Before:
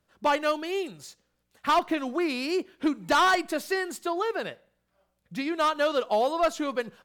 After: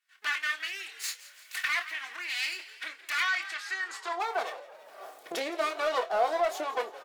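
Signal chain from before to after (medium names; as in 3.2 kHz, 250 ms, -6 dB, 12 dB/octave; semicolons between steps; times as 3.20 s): comb filter that takes the minimum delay 2.7 ms; recorder AGC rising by 44 dB/s; 3.22–4.20 s: low-pass 6 kHz 12 dB/octave; frequency-shifting echo 168 ms, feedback 51%, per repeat +61 Hz, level -17 dB; high-pass sweep 1.9 kHz -> 580 Hz, 3.58–4.56 s; saturation -12.5 dBFS, distortion -23 dB; doubling 26 ms -8.5 dB; random flutter of the level, depth 50%; trim -2 dB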